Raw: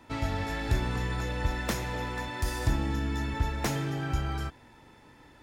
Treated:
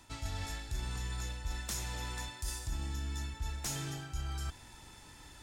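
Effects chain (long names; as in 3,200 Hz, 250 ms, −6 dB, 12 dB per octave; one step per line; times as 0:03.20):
graphic EQ with 10 bands 125 Hz −6 dB, 250 Hz −9 dB, 500 Hz −11 dB, 1,000 Hz −5 dB, 2,000 Hz −7 dB, 8,000 Hz +8 dB
reversed playback
downward compressor 4 to 1, threshold −45 dBFS, peak gain reduction 18 dB
reversed playback
level +7.5 dB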